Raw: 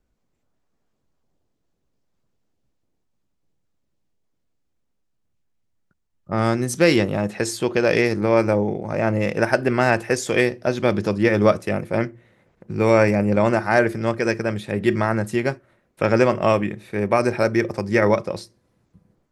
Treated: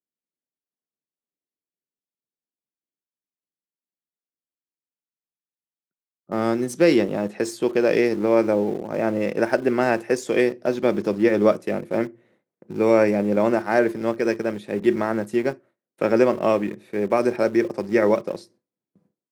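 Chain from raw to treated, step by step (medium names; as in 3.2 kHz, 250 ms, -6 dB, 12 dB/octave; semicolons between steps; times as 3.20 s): gate with hold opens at -47 dBFS; Bessel high-pass 180 Hz, order 4; peaking EQ 330 Hz +8 dB 2.1 oct; in parallel at -11.5 dB: small samples zeroed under -21.5 dBFS; on the sum: trim -8 dB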